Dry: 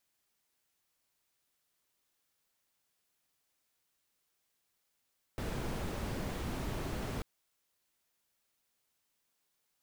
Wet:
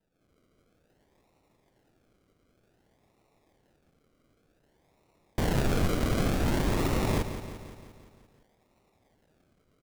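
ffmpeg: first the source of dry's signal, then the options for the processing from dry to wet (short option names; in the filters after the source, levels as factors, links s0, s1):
-f lavfi -i "anoisesrc=c=brown:a=0.0661:d=1.84:r=44100:seed=1"
-af "dynaudnorm=f=140:g=3:m=3.55,acrusher=samples=39:mix=1:aa=0.000001:lfo=1:lforange=23.4:lforate=0.54,aecho=1:1:173|346|519|692|865|1038|1211:0.299|0.179|0.107|0.0645|0.0387|0.0232|0.0139"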